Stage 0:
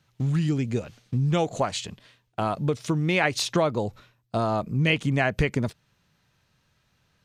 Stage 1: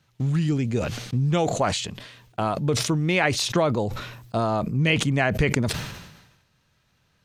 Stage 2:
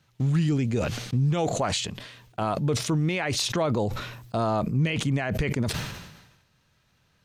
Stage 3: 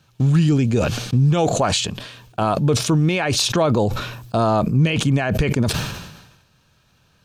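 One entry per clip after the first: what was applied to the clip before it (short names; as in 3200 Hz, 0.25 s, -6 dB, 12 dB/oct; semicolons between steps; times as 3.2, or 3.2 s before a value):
sustainer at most 54 dB/s; gain +1 dB
limiter -16 dBFS, peak gain reduction 10.5 dB
notch 2000 Hz, Q 6.4; gain +7.5 dB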